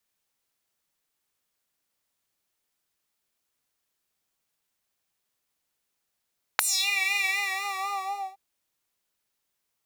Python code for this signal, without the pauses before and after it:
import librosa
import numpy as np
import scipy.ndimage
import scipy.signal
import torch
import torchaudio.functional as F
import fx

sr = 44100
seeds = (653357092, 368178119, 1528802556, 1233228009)

y = fx.sub_patch_vibrato(sr, seeds[0], note=79, wave='triangle', wave2='square', interval_st=0, detune_cents=16, level2_db=-9.0, sub_db=-5.5, noise_db=-28.0, kind='highpass', cutoff_hz=740.0, q=3.9, env_oct=4.0, env_decay_s=0.31, env_sustain_pct=40, attack_ms=1.3, decay_s=0.3, sustain_db=-11.0, release_s=1.11, note_s=0.66, lfo_hz=4.0, vibrato_cents=57)